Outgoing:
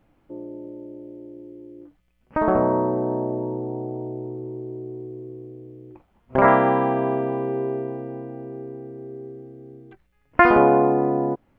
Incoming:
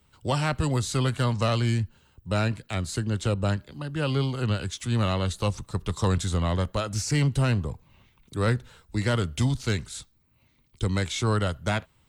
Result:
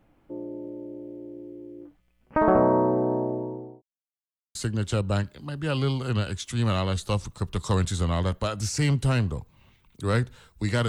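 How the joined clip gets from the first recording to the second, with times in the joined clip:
outgoing
0:02.88–0:03.82: fade out equal-power
0:03.82–0:04.55: silence
0:04.55: continue with incoming from 0:02.88

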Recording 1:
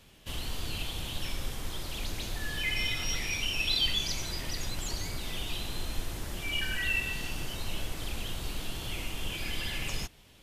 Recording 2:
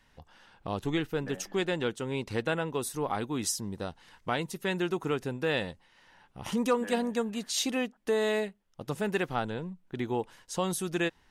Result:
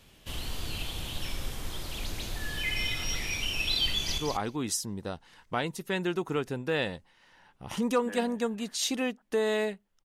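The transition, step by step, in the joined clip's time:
recording 1
0:03.88–0:04.18: delay throw 190 ms, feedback 10%, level −5.5 dB
0:04.18: continue with recording 2 from 0:02.93

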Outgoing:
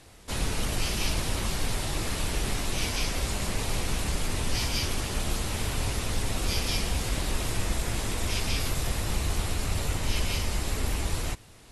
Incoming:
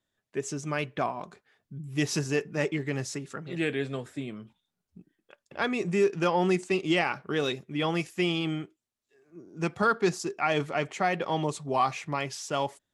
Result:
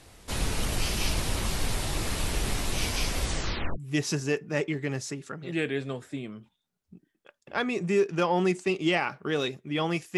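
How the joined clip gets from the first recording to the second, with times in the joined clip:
outgoing
0:03.23: tape stop 0.55 s
0:03.78: continue with incoming from 0:01.82

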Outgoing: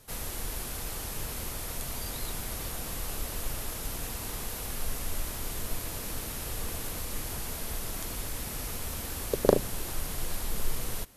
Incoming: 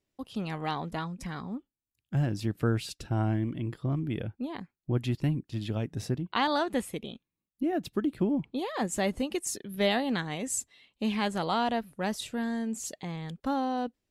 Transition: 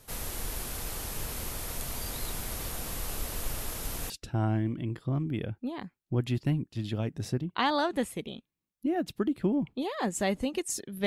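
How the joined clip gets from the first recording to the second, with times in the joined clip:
outgoing
0:04.10: continue with incoming from 0:02.87

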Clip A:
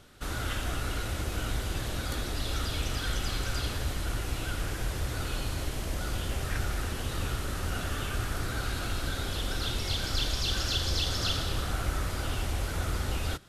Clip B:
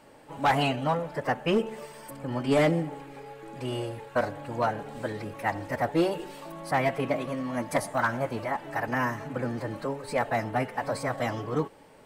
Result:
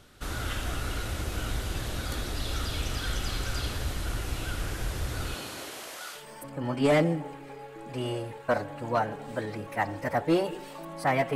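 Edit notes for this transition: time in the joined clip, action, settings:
clip A
0:05.33–0:06.27: high-pass filter 170 Hz → 1,300 Hz
0:06.19: continue with clip B from 0:01.86, crossfade 0.16 s

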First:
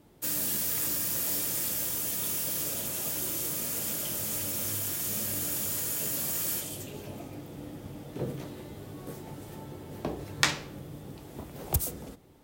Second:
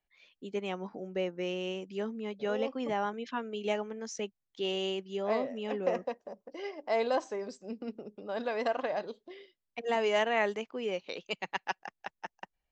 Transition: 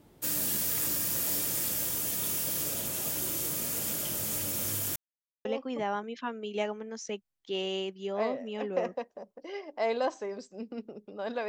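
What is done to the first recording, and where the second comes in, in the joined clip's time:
first
0:04.96–0:05.45: silence
0:05.45: continue with second from 0:02.55

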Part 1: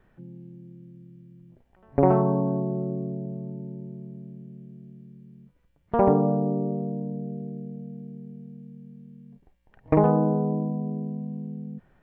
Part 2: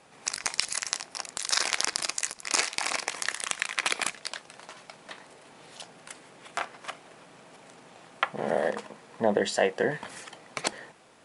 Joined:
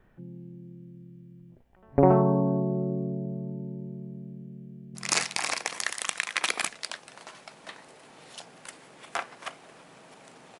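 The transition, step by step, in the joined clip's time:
part 1
0:04.64–0:04.95: delay throw 290 ms, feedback 35%, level −1 dB
0:04.95: continue with part 2 from 0:02.37

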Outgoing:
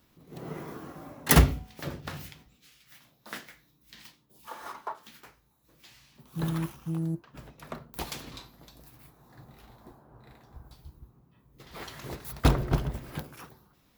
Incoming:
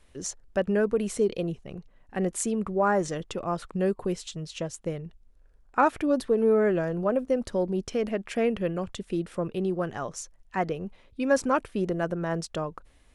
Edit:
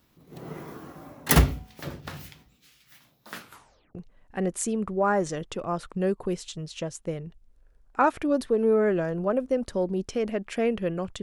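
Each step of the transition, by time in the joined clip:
outgoing
0:03.30: tape stop 0.65 s
0:03.95: continue with incoming from 0:01.74

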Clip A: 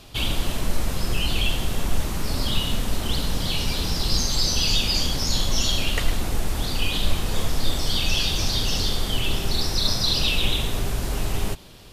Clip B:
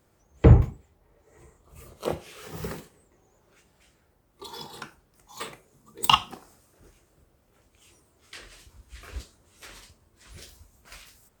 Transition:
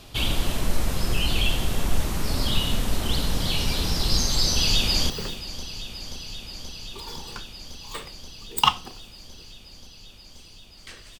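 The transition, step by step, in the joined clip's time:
clip A
0:04.52–0:05.10: delay throw 530 ms, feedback 85%, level −13 dB
0:05.10: continue with clip B from 0:02.56

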